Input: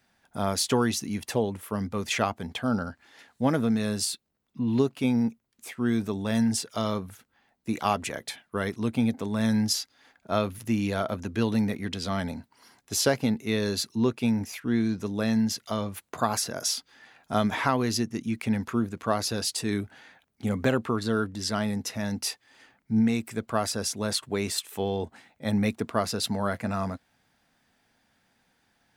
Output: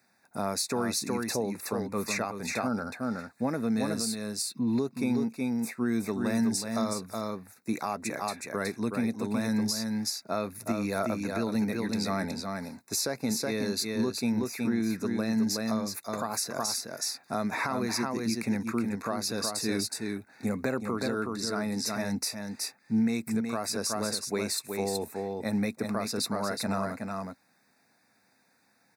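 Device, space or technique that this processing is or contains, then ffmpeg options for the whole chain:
PA system with an anti-feedback notch: -af "highpass=150,asuperstop=centerf=3100:order=12:qfactor=3.2,highshelf=f=8.9k:g=4.5,aecho=1:1:370:0.562,alimiter=limit=-19dB:level=0:latency=1:release=260"

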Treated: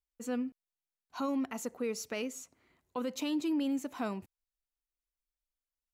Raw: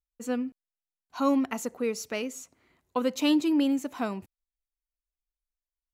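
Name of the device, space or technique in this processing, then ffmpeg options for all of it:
stacked limiters: -af "alimiter=limit=-17.5dB:level=0:latency=1:release=413,alimiter=limit=-22.5dB:level=0:latency=1:release=32,volume=-3.5dB"

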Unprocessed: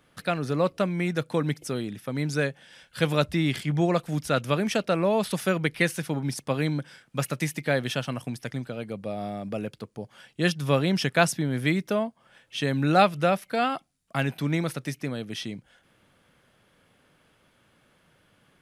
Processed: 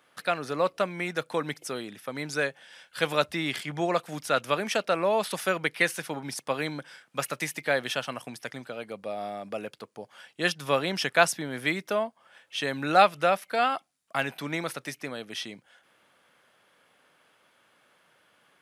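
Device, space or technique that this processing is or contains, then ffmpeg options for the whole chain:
filter by subtraction: -filter_complex "[0:a]asplit=2[a][b];[b]lowpass=890,volume=-1[c];[a][c]amix=inputs=2:normalize=0"

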